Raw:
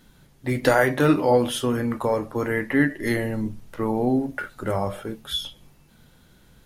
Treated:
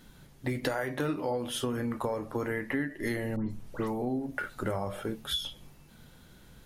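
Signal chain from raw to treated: compressor 6:1, threshold -29 dBFS, peak gain reduction 15 dB; 3.36–4.02 dispersion highs, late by 0.149 s, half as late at 2700 Hz

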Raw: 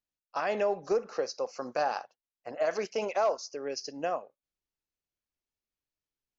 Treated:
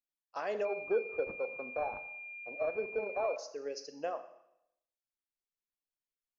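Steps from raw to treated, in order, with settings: dynamic EQ 460 Hz, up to +6 dB, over -43 dBFS, Q 1.9; reverb removal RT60 0.81 s; bell 70 Hz -7.5 dB 2.1 oct; Schroeder reverb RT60 0.78 s, combs from 28 ms, DRR 10 dB; 0.65–3.36 pulse-width modulation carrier 2400 Hz; gain -7.5 dB

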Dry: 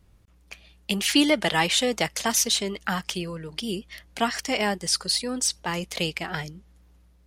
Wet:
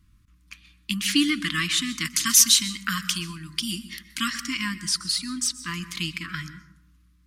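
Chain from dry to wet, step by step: brick-wall FIR band-stop 340–1000 Hz; 2.05–4.3 high shelf 2900 Hz +10 dB; plate-style reverb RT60 0.71 s, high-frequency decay 0.45×, pre-delay 0.115 s, DRR 13.5 dB; gain -1 dB

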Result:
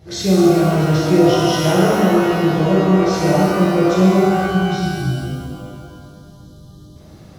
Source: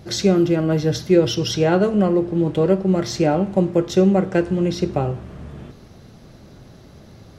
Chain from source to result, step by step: spectral delete 4.18–6.96, 220–2900 Hz; shimmer reverb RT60 2 s, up +12 st, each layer -8 dB, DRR -8.5 dB; gain -7 dB

